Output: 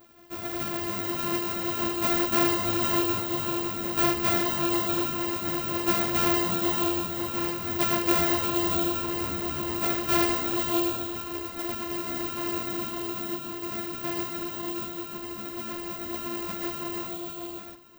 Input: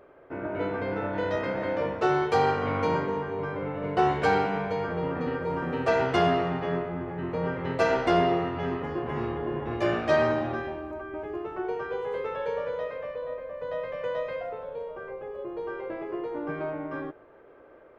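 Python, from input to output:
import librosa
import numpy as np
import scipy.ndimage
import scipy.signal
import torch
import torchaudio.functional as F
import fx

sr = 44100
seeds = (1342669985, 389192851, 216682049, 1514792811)

p1 = np.r_[np.sort(x[:len(x) // 128 * 128].reshape(-1, 128), axis=1).ravel(), x[len(x) // 128 * 128:]]
p2 = p1 + fx.echo_multitap(p1, sr, ms=(475, 632), db=(-6.5, -6.5), dry=0)
p3 = (np.kron(scipy.signal.resample_poly(p2, 1, 2), np.eye(2)[0]) * 2)[:len(p2)]
y = fx.ensemble(p3, sr)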